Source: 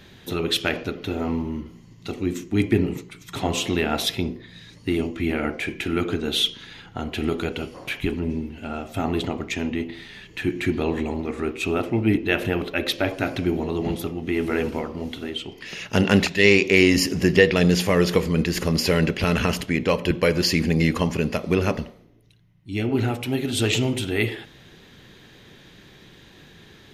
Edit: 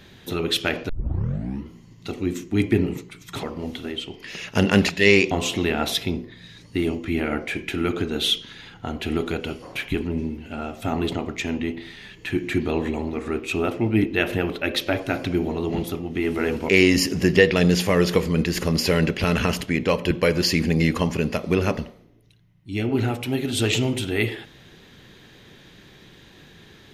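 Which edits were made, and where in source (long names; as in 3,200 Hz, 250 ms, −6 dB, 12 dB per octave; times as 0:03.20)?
0:00.89: tape start 0.76 s
0:14.81–0:16.69: move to 0:03.43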